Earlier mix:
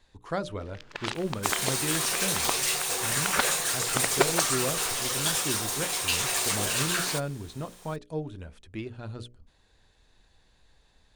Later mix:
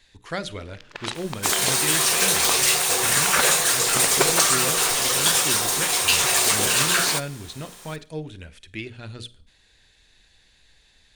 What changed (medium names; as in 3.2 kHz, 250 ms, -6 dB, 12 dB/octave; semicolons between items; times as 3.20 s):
speech: add resonant high shelf 1.5 kHz +8 dB, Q 1.5; second sound +7.5 dB; reverb: on, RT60 0.40 s